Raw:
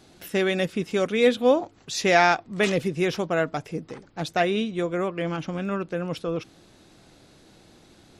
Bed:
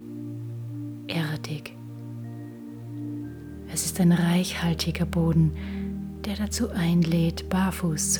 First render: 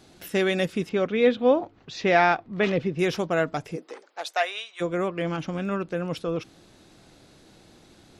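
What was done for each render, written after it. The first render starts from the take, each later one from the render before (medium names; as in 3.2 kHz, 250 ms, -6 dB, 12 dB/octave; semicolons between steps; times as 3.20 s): 0.89–2.99 s: distance through air 210 m; 3.75–4.80 s: high-pass 300 Hz -> 980 Hz 24 dB/octave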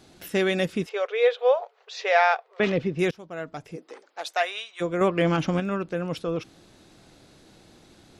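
0.86–2.60 s: brick-wall FIR high-pass 400 Hz; 3.11–4.28 s: fade in, from -23 dB; 5.01–5.60 s: gain +6 dB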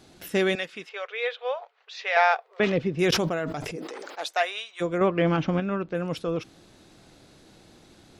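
0.55–2.17 s: band-pass filter 2.3 kHz, Q 0.7; 2.92–4.27 s: decay stretcher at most 22 dB/s; 4.98–5.95 s: distance through air 150 m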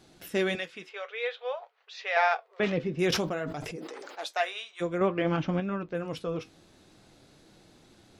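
flange 0.53 Hz, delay 5.4 ms, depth 7.3 ms, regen -60%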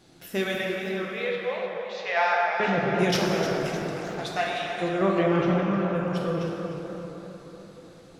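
plate-style reverb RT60 4.1 s, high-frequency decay 0.45×, DRR -2 dB; modulated delay 306 ms, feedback 46%, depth 128 cents, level -11 dB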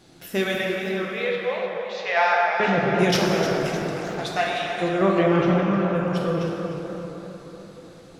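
trim +3.5 dB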